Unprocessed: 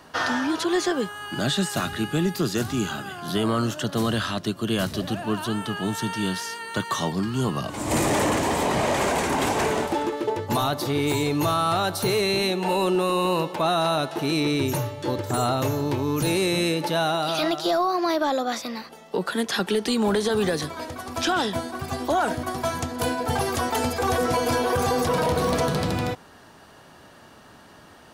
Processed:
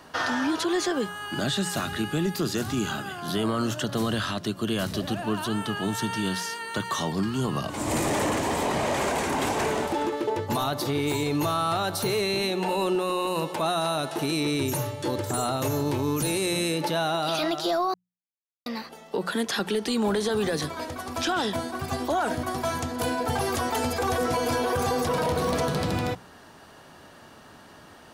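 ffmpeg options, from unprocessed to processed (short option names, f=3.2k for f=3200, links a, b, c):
-filter_complex "[0:a]asettb=1/sr,asplit=3[a][b][c];[a]atrim=end=13.274[d];[b]atrim=start=13.27:end=16.78,asetpts=PTS-STARTPTS,afade=t=in:d=0.004:c=qsin,afade=t=out:st=3.506:d=0.004:c=qsin,equalizer=f=9.7k:t=o:w=1.1:g=7[e];[c]atrim=start=16.776[f];[d][e]acrossfade=d=0.004:c1=hsin:c2=qsin[g];[g][f]acrossfade=d=0.004:c1=qsin:c2=hsin,asplit=3[h][i][j];[h]atrim=end=17.94,asetpts=PTS-STARTPTS,afade=t=out:st=17.936:d=0.004:c=hsin[k];[i]atrim=start=17.94:end=18.66,asetpts=PTS-STARTPTS,volume=0[l];[j]atrim=start=18.66,asetpts=PTS-STARTPTS,afade=t=in:d=0.004:c=hsin[m];[k][l][m]concat=n=3:v=0:a=1,bandreject=f=60:t=h:w=6,bandreject=f=120:t=h:w=6,bandreject=f=180:t=h:w=6,alimiter=limit=-18dB:level=0:latency=1"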